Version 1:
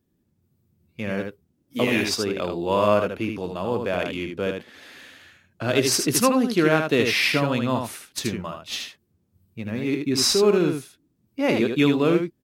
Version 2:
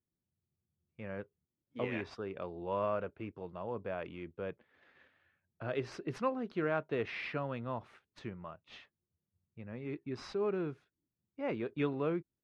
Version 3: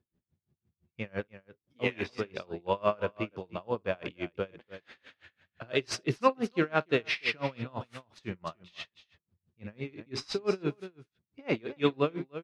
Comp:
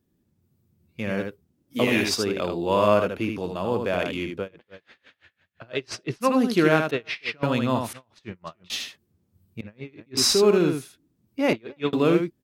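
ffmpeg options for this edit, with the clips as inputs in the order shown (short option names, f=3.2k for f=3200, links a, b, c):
-filter_complex "[2:a]asplit=5[a][b][c][d][e];[0:a]asplit=6[f][g][h][i][j][k];[f]atrim=end=4.49[l];[a]atrim=start=4.33:end=6.36[m];[g]atrim=start=6.2:end=6.912[n];[b]atrim=start=6.908:end=7.432[o];[h]atrim=start=7.428:end=7.932[p];[c]atrim=start=7.928:end=8.702[q];[i]atrim=start=8.698:end=9.612[r];[d]atrim=start=9.608:end=10.172[s];[j]atrim=start=10.168:end=11.532[t];[e]atrim=start=11.528:end=11.932[u];[k]atrim=start=11.928[v];[l][m]acrossfade=d=0.16:c1=tri:c2=tri[w];[w][n]acrossfade=d=0.16:c1=tri:c2=tri[x];[x][o]acrossfade=d=0.004:c1=hsin:c2=hsin[y];[y][p]acrossfade=d=0.004:c1=hsin:c2=hsin[z];[z][q]acrossfade=d=0.004:c1=hsin:c2=hsin[aa];[aa][r]acrossfade=d=0.004:c1=hsin:c2=hsin[ab];[ab][s]acrossfade=d=0.004:c1=hsin:c2=hsin[ac];[ac][t]acrossfade=d=0.004:c1=hsin:c2=hsin[ad];[ad][u]acrossfade=d=0.004:c1=hsin:c2=hsin[ae];[ae][v]acrossfade=d=0.004:c1=hsin:c2=hsin"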